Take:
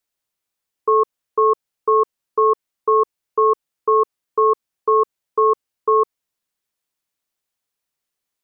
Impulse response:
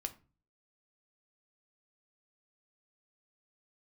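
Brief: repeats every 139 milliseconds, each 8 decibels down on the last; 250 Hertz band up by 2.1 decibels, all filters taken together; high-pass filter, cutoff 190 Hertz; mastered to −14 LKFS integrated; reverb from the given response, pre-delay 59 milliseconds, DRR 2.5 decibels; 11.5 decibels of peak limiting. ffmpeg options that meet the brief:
-filter_complex "[0:a]highpass=190,equalizer=frequency=250:width_type=o:gain=5.5,alimiter=limit=-18.5dB:level=0:latency=1,aecho=1:1:139|278|417|556|695:0.398|0.159|0.0637|0.0255|0.0102,asplit=2[link_01][link_02];[1:a]atrim=start_sample=2205,adelay=59[link_03];[link_02][link_03]afir=irnorm=-1:irlink=0,volume=-1dB[link_04];[link_01][link_04]amix=inputs=2:normalize=0,volume=15dB"

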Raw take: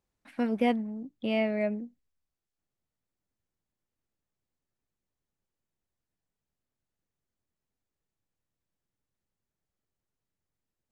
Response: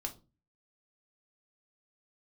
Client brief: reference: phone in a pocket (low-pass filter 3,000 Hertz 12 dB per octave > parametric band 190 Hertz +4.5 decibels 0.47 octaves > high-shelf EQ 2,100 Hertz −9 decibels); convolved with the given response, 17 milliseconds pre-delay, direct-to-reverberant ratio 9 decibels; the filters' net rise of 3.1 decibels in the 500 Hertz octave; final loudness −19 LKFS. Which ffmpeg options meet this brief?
-filter_complex "[0:a]equalizer=frequency=500:width_type=o:gain=4.5,asplit=2[link_01][link_02];[1:a]atrim=start_sample=2205,adelay=17[link_03];[link_02][link_03]afir=irnorm=-1:irlink=0,volume=-8.5dB[link_04];[link_01][link_04]amix=inputs=2:normalize=0,lowpass=3000,equalizer=frequency=190:width_type=o:width=0.47:gain=4.5,highshelf=frequency=2100:gain=-9,volume=8.5dB"

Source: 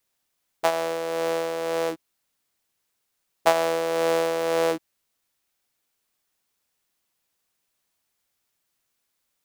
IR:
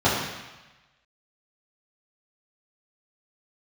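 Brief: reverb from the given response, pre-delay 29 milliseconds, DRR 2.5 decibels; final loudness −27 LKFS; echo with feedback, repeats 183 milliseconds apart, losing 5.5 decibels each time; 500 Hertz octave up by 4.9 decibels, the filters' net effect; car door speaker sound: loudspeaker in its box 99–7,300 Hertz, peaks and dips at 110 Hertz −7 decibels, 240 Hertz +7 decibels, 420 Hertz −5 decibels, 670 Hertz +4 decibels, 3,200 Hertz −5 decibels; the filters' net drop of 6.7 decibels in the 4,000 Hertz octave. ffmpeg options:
-filter_complex "[0:a]equalizer=frequency=500:width_type=o:gain=5,equalizer=frequency=4000:width_type=o:gain=-6,aecho=1:1:183|366|549|732|915|1098|1281:0.531|0.281|0.149|0.079|0.0419|0.0222|0.0118,asplit=2[link_01][link_02];[1:a]atrim=start_sample=2205,adelay=29[link_03];[link_02][link_03]afir=irnorm=-1:irlink=0,volume=-21.5dB[link_04];[link_01][link_04]amix=inputs=2:normalize=0,highpass=99,equalizer=frequency=110:width_type=q:width=4:gain=-7,equalizer=frequency=240:width_type=q:width=4:gain=7,equalizer=frequency=420:width_type=q:width=4:gain=-5,equalizer=frequency=670:width_type=q:width=4:gain=4,equalizer=frequency=3200:width_type=q:width=4:gain=-5,lowpass=frequency=7300:width=0.5412,lowpass=frequency=7300:width=1.3066,volume=-7.5dB"

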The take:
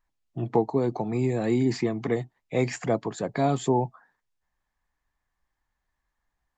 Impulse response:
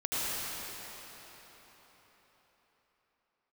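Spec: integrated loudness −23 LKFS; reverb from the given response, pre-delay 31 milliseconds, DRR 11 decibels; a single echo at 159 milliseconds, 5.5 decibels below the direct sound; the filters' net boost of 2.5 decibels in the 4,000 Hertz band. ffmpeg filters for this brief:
-filter_complex "[0:a]equalizer=frequency=4000:width_type=o:gain=3,aecho=1:1:159:0.531,asplit=2[link_01][link_02];[1:a]atrim=start_sample=2205,adelay=31[link_03];[link_02][link_03]afir=irnorm=-1:irlink=0,volume=-20.5dB[link_04];[link_01][link_04]amix=inputs=2:normalize=0,volume=2.5dB"

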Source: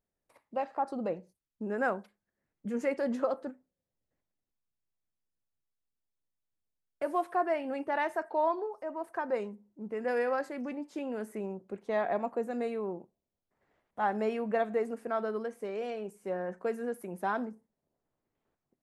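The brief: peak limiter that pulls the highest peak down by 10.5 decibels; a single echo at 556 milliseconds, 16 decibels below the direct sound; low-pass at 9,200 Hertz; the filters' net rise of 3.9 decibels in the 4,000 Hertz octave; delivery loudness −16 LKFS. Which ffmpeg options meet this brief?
ffmpeg -i in.wav -af "lowpass=9200,equalizer=frequency=4000:width_type=o:gain=5.5,alimiter=level_in=3dB:limit=-24dB:level=0:latency=1,volume=-3dB,aecho=1:1:556:0.158,volume=21.5dB" out.wav

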